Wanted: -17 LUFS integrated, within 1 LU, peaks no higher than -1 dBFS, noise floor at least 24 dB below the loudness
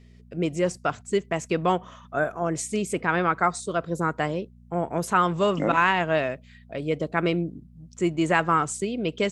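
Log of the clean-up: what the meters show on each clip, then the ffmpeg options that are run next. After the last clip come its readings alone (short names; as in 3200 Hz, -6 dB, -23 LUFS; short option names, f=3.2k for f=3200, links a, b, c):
hum 60 Hz; harmonics up to 240 Hz; hum level -49 dBFS; loudness -25.5 LUFS; peak -5.5 dBFS; loudness target -17.0 LUFS
-> -af "bandreject=f=60:t=h:w=4,bandreject=f=120:t=h:w=4,bandreject=f=180:t=h:w=4,bandreject=f=240:t=h:w=4"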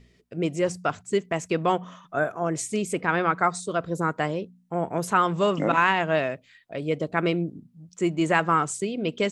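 hum none; loudness -25.5 LUFS; peak -6.0 dBFS; loudness target -17.0 LUFS
-> -af "volume=8.5dB,alimiter=limit=-1dB:level=0:latency=1"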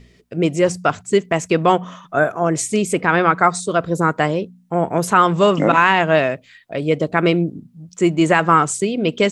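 loudness -17.5 LUFS; peak -1.0 dBFS; noise floor -52 dBFS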